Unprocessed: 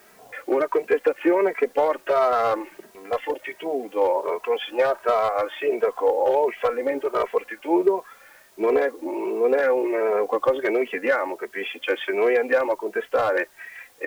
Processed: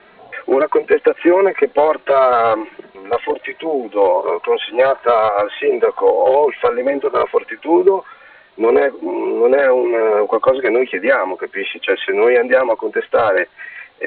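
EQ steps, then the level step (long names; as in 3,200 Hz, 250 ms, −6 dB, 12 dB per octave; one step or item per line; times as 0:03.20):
Butterworth low-pass 4,000 Hz 96 dB per octave
+7.5 dB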